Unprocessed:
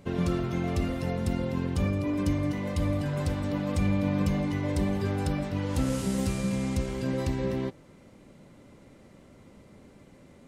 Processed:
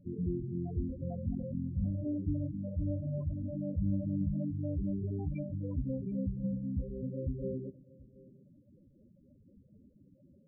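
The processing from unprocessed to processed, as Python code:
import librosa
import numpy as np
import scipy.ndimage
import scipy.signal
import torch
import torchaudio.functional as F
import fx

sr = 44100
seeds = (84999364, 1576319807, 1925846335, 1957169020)

p1 = fx.high_shelf(x, sr, hz=2500.0, db=4.5)
p2 = fx.spec_topn(p1, sr, count=8)
p3 = fx.filter_lfo_notch(p2, sr, shape='sine', hz=3.9, low_hz=250.0, high_hz=2800.0, q=1.2)
p4 = p3 + fx.echo_single(p3, sr, ms=730, db=-21.5, dry=0)
y = p4 * librosa.db_to_amplitude(-5.0)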